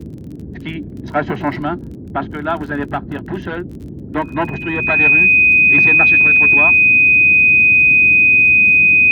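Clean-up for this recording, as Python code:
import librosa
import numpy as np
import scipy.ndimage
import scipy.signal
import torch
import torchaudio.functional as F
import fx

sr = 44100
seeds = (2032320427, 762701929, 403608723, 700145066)

y = fx.fix_declick_ar(x, sr, threshold=6.5)
y = fx.notch(y, sr, hz=2500.0, q=30.0)
y = fx.noise_reduce(y, sr, print_start_s=0.15, print_end_s=0.65, reduce_db=29.0)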